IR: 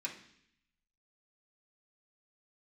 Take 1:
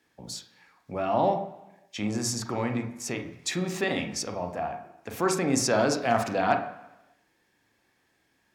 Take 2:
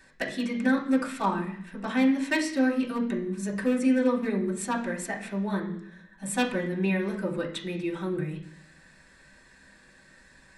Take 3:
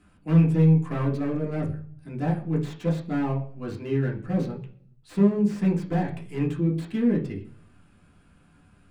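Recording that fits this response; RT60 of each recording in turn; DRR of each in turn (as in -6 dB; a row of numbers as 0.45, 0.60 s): 2; 1.0, 0.65, 0.45 s; 5.5, -5.5, -2.5 dB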